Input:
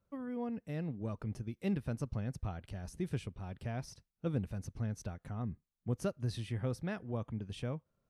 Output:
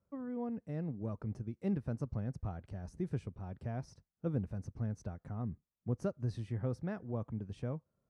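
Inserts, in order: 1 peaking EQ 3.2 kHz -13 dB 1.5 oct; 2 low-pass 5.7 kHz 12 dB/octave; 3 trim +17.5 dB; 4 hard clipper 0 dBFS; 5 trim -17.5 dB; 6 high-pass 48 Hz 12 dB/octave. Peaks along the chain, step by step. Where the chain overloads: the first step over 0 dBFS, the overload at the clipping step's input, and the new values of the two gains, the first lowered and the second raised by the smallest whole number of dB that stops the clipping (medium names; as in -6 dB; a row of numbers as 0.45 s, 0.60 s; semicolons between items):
-21.5 dBFS, -21.5 dBFS, -4.0 dBFS, -4.0 dBFS, -21.5 dBFS, -22.0 dBFS; nothing clips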